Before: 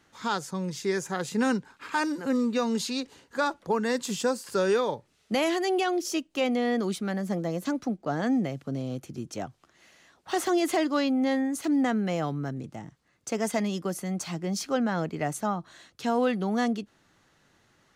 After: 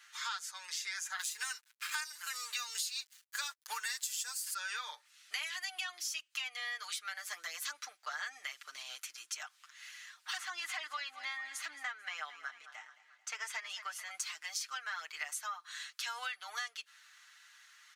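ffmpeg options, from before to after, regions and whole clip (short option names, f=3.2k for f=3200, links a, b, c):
-filter_complex "[0:a]asettb=1/sr,asplit=3[a][b][c];[a]atrim=end=1.194[d];[b]atrim=start=1.19:end=4.54,asetpts=PTS-STARTPTS,afade=t=in:d=0.004:c=qsin,afade=t=out:st=3.346:d=0.004:c=qsin,aemphasis=mode=production:type=75kf,aeval=exprs='sgn(val(0))*max(abs(val(0))-0.00501,0)':c=same[e];[c]atrim=start=4.536[f];[d][e]acrossfade=d=0.004:c1=hsin:c2=qsin[g];[g][f]acrossfade=d=0.004:c1=qsin:c2=hsin,asettb=1/sr,asplit=3[h][i][j];[h]atrim=end=10.374[k];[i]atrim=start=10.37:end=14.11,asetpts=PTS-STARTPTS,afade=t=in:d=0.004:c=qsin,afade=t=out:st=3.736:d=0.004:c=qsin,lowpass=f=1.8k:p=1,aecho=1:1:220|440|660|880:0.141|0.072|0.0367|0.0187,atrim=end_sample=164934[l];[j]atrim=start=14.106[m];[k][l]acrossfade=d=0.004:c1=hsin:c2=qsin[n];[n][m]acrossfade=d=0.004:c1=qsin:c2=hsin,highpass=f=1.4k:w=0.5412,highpass=f=1.4k:w=1.3066,aecho=1:1:6.6:0.88,acompressor=threshold=-43dB:ratio=6,volume=5.5dB"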